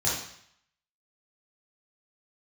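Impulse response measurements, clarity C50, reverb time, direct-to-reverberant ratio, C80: 1.5 dB, 0.65 s, −7.5 dB, 6.0 dB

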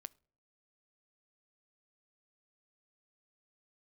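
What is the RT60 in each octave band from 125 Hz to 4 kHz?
0.65, 0.60, 0.55, 0.45, 0.35, 0.35 seconds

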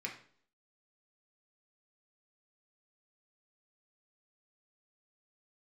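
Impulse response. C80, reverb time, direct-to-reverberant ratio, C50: 13.0 dB, 0.55 s, −0.5 dB, 8.5 dB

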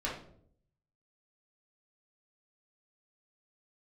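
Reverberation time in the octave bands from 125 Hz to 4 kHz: 1.0, 0.85, 0.75, 0.50, 0.40, 0.40 seconds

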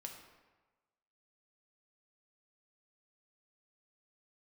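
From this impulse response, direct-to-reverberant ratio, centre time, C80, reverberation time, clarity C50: 2.0 dB, 35 ms, 7.5 dB, 1.3 s, 5.5 dB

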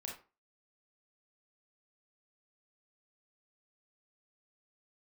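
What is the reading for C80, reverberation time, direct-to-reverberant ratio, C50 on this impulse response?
12.0 dB, 0.35 s, −1.5 dB, 5.0 dB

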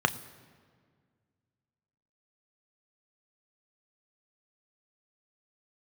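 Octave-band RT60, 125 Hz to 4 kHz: 2.4, 2.4, 2.0, 1.7, 1.6, 1.3 seconds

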